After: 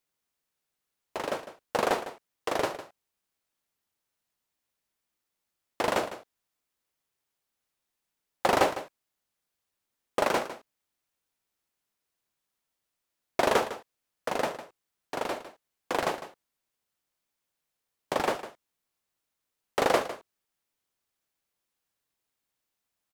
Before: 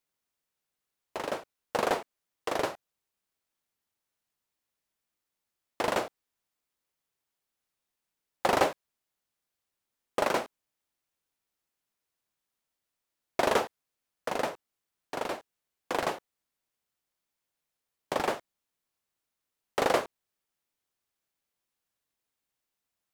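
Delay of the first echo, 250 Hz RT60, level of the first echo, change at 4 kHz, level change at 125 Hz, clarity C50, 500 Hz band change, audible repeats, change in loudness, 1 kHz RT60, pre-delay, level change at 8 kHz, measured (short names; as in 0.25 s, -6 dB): 0.154 s, none, -13.5 dB, +1.5 dB, +1.5 dB, none, +1.5 dB, 1, +1.5 dB, none, none, +1.5 dB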